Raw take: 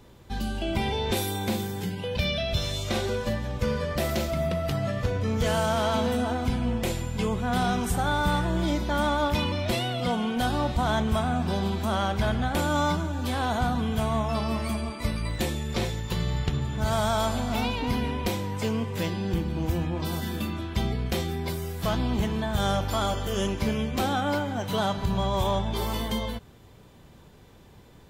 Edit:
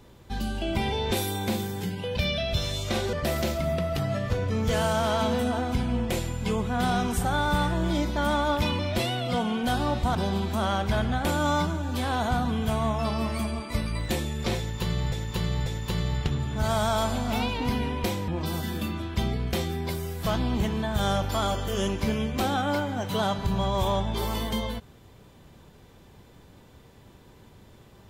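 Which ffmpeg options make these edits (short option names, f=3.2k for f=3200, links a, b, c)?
-filter_complex "[0:a]asplit=6[a][b][c][d][e][f];[a]atrim=end=3.132[g];[b]atrim=start=3.858:end=10.882[h];[c]atrim=start=11.448:end=16.422[i];[d]atrim=start=15.878:end=16.422[j];[e]atrim=start=15.878:end=18.502[k];[f]atrim=start=19.868[l];[g][h]acrossfade=d=0.004:c1=hsin:c2=hsin[m];[m][i]acrossfade=d=0.004:c1=hsin:c2=hsin[n];[n][j]acrossfade=d=0.004:c1=hsin:c2=hsin[o];[o][k]acrossfade=d=0.004:c1=hsin:c2=hsin[p];[p][l]acrossfade=d=0.004:c1=hsin:c2=hsin"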